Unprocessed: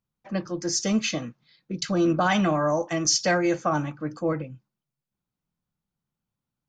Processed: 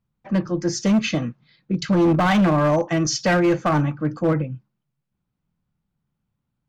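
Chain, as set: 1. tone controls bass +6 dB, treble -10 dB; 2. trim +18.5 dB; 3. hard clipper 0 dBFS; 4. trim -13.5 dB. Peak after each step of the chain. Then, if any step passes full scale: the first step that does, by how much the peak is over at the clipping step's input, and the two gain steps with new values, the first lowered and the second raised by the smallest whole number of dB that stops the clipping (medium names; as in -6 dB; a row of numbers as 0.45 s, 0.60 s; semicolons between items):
-10.0 dBFS, +8.5 dBFS, 0.0 dBFS, -13.5 dBFS; step 2, 8.5 dB; step 2 +9.5 dB, step 4 -4.5 dB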